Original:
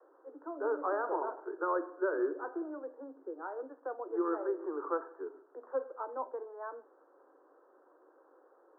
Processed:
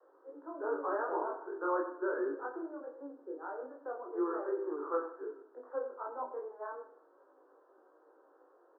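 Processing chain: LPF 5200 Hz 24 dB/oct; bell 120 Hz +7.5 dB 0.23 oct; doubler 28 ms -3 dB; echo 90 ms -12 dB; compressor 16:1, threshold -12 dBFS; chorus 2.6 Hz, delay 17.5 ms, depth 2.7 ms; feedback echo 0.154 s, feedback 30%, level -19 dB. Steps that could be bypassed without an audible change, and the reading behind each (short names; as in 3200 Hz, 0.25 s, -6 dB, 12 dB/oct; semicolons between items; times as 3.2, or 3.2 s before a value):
LPF 5200 Hz: input band ends at 1700 Hz; bell 120 Hz: input band starts at 250 Hz; compressor, threshold -12 dBFS: input peak -17.5 dBFS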